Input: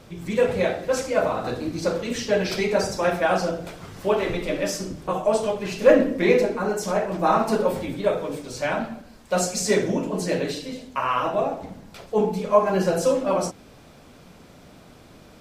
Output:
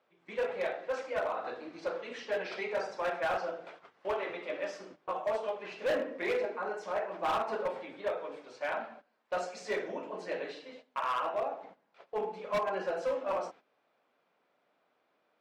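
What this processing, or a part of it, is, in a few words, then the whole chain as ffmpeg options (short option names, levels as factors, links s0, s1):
walkie-talkie: -af "highpass=560,lowpass=2500,asoftclip=type=hard:threshold=0.106,agate=range=0.224:threshold=0.00631:ratio=16:detection=peak,volume=0.447"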